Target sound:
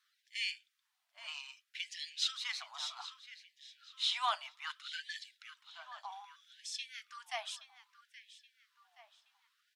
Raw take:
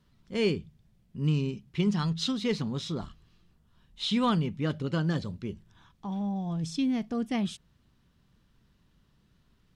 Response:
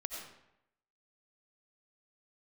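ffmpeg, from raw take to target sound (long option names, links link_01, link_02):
-filter_complex "[0:a]lowshelf=frequency=450:gain=-11,asplit=2[link_01][link_02];[link_02]adelay=824,lowpass=frequency=4800:poles=1,volume=-12.5dB,asplit=2[link_03][link_04];[link_04]adelay=824,lowpass=frequency=4800:poles=1,volume=0.45,asplit=2[link_05][link_06];[link_06]adelay=824,lowpass=frequency=4800:poles=1,volume=0.45,asplit=2[link_07][link_08];[link_08]adelay=824,lowpass=frequency=4800:poles=1,volume=0.45[link_09];[link_01][link_03][link_05][link_07][link_09]amix=inputs=5:normalize=0,flanger=delay=0.5:depth=6.7:regen=-58:speed=0.39:shape=sinusoidal,afftfilt=real='re*gte(b*sr/1024,580*pow(1700/580,0.5+0.5*sin(2*PI*0.63*pts/sr)))':imag='im*gte(b*sr/1024,580*pow(1700/580,0.5+0.5*sin(2*PI*0.63*pts/sr)))':win_size=1024:overlap=0.75,volume=3.5dB"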